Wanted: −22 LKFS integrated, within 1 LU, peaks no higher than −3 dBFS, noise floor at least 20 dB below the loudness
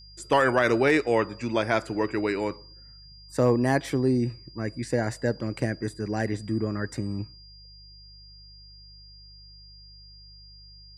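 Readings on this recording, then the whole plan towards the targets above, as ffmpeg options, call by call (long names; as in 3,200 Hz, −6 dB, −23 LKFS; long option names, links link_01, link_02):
mains hum 50 Hz; hum harmonics up to 150 Hz; level of the hum −48 dBFS; interfering tone 4,800 Hz; level of the tone −49 dBFS; integrated loudness −26.5 LKFS; sample peak −9.5 dBFS; target loudness −22.0 LKFS
→ -af "bandreject=frequency=50:width_type=h:width=4,bandreject=frequency=100:width_type=h:width=4,bandreject=frequency=150:width_type=h:width=4"
-af "bandreject=frequency=4800:width=30"
-af "volume=4.5dB"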